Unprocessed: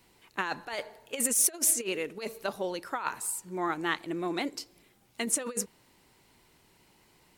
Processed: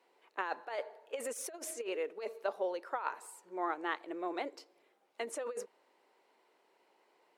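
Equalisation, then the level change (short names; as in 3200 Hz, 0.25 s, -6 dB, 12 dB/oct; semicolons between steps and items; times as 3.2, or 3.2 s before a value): ladder high-pass 380 Hz, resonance 30%; LPF 1300 Hz 6 dB/oct; +4.0 dB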